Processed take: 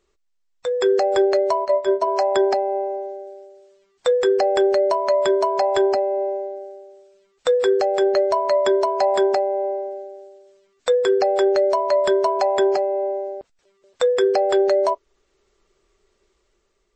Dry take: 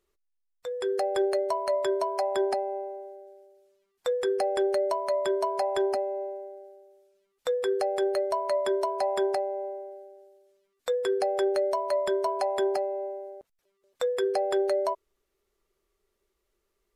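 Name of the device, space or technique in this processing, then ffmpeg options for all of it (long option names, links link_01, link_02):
low-bitrate web radio: -filter_complex "[0:a]asplit=3[link_01][link_02][link_03];[link_01]afade=type=out:start_time=1.64:duration=0.02[link_04];[link_02]agate=range=-12dB:threshold=-26dB:ratio=16:detection=peak,afade=type=in:start_time=1.64:duration=0.02,afade=type=out:start_time=2.06:duration=0.02[link_05];[link_03]afade=type=in:start_time=2.06:duration=0.02[link_06];[link_04][link_05][link_06]amix=inputs=3:normalize=0,dynaudnorm=framelen=170:gausssize=7:maxgain=4dB,alimiter=limit=-17.5dB:level=0:latency=1:release=436,volume=8.5dB" -ar 22050 -c:a libmp3lame -b:a 32k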